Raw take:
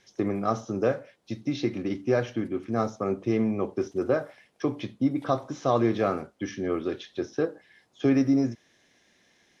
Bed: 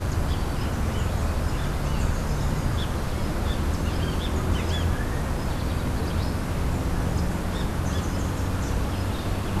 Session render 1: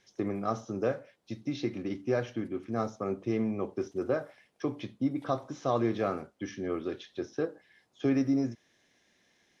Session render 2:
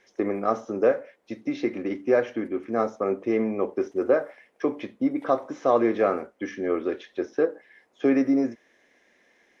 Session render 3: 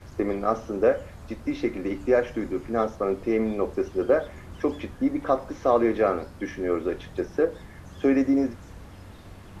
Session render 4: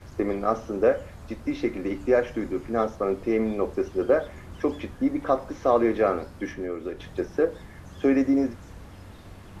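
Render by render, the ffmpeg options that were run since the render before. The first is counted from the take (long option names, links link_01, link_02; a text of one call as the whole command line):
ffmpeg -i in.wav -af "volume=-5dB" out.wav
ffmpeg -i in.wav -af "equalizer=frequency=125:width_type=o:width=1:gain=-10,equalizer=frequency=250:width_type=o:width=1:gain=5,equalizer=frequency=500:width_type=o:width=1:gain=9,equalizer=frequency=1000:width_type=o:width=1:gain=4,equalizer=frequency=2000:width_type=o:width=1:gain=9,equalizer=frequency=4000:width_type=o:width=1:gain=-4" out.wav
ffmpeg -i in.wav -i bed.wav -filter_complex "[1:a]volume=-18dB[link_01];[0:a][link_01]amix=inputs=2:normalize=0" out.wav
ffmpeg -i in.wav -filter_complex "[0:a]asettb=1/sr,asplit=3[link_01][link_02][link_03];[link_01]atrim=end=6.524[link_04];[link_02]atrim=start=6.52:end=7,asetpts=PTS-STARTPTS,afade=type=in:duration=0.004:curve=qsin,afade=type=out:start_time=0.476:duration=0.004:curve=qsin,acrossover=split=570|1700[link_05][link_06][link_07];[link_05]acompressor=threshold=-30dB:ratio=4[link_08];[link_06]acompressor=threshold=-43dB:ratio=4[link_09];[link_07]acompressor=threshold=-51dB:ratio=4[link_10];[link_08][link_09][link_10]amix=inputs=3:normalize=0[link_11];[link_03]atrim=start=6.996[link_12];[link_04][link_11]acrossfade=duration=0.004:curve1=hsin:curve2=qsin[link_13];[link_13][link_12]acrossfade=duration=0.004:curve1=qsin:curve2=hsin" out.wav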